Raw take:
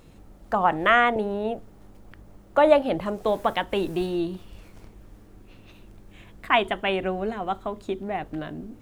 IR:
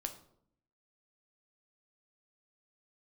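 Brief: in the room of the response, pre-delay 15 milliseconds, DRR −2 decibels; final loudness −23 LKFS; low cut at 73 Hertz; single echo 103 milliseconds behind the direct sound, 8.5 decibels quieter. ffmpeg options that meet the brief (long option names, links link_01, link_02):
-filter_complex "[0:a]highpass=73,aecho=1:1:103:0.376,asplit=2[link_01][link_02];[1:a]atrim=start_sample=2205,adelay=15[link_03];[link_02][link_03]afir=irnorm=-1:irlink=0,volume=3dB[link_04];[link_01][link_04]amix=inputs=2:normalize=0,volume=-3.5dB"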